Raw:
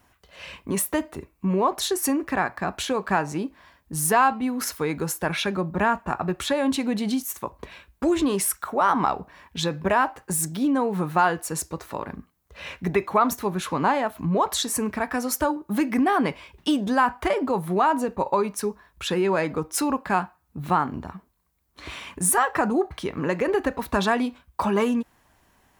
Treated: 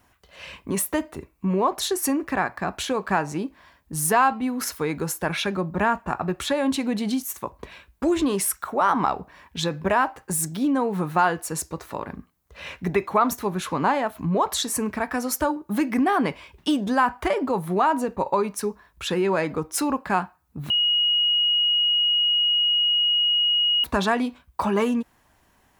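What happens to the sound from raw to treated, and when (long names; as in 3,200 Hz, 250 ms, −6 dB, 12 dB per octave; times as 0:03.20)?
0:20.70–0:23.84: beep over 2,890 Hz −17.5 dBFS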